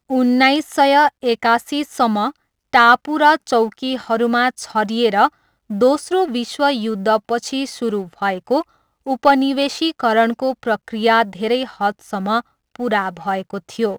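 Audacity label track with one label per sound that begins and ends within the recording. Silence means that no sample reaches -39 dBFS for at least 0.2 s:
2.730000	5.290000	sound
5.700000	8.630000	sound
9.060000	12.410000	sound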